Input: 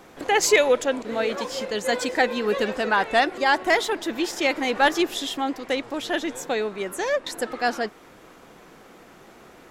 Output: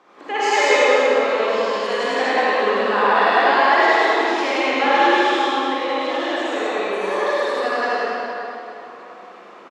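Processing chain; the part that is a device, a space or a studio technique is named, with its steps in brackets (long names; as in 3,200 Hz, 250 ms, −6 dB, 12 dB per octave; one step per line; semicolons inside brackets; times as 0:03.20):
station announcement (band-pass filter 320–4,600 Hz; parametric band 1,100 Hz +8 dB 0.37 octaves; loudspeakers that aren't time-aligned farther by 36 metres −1 dB, 64 metres −1 dB; convolution reverb RT60 3.2 s, pre-delay 38 ms, DRR −8 dB)
level −7.5 dB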